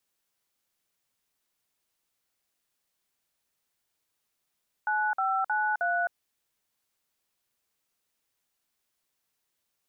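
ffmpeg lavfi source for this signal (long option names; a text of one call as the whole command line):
ffmpeg -f lavfi -i "aevalsrc='0.0447*clip(min(mod(t,0.313),0.262-mod(t,0.313))/0.002,0,1)*(eq(floor(t/0.313),0)*(sin(2*PI*852*mod(t,0.313))+sin(2*PI*1477*mod(t,0.313)))+eq(floor(t/0.313),1)*(sin(2*PI*770*mod(t,0.313))+sin(2*PI*1336*mod(t,0.313)))+eq(floor(t/0.313),2)*(sin(2*PI*852*mod(t,0.313))+sin(2*PI*1477*mod(t,0.313)))+eq(floor(t/0.313),3)*(sin(2*PI*697*mod(t,0.313))+sin(2*PI*1477*mod(t,0.313))))':duration=1.252:sample_rate=44100" out.wav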